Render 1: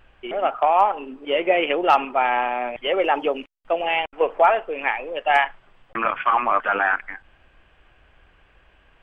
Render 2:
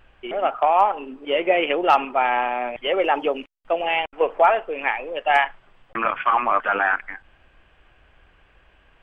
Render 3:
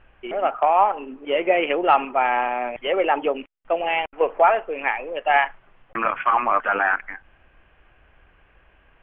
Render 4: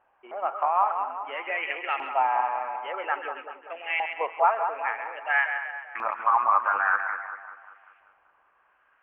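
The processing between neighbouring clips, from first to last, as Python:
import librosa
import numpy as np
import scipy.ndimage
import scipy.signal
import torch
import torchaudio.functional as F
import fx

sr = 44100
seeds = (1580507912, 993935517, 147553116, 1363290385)

y1 = x
y2 = scipy.signal.sosfilt(scipy.signal.butter(4, 2900.0, 'lowpass', fs=sr, output='sos'), y1)
y3 = fx.filter_lfo_bandpass(y2, sr, shape='saw_up', hz=0.5, low_hz=840.0, high_hz=2200.0, q=2.8)
y3 = fx.echo_split(y3, sr, split_hz=1400.0, low_ms=193, high_ms=133, feedback_pct=52, wet_db=-7.0)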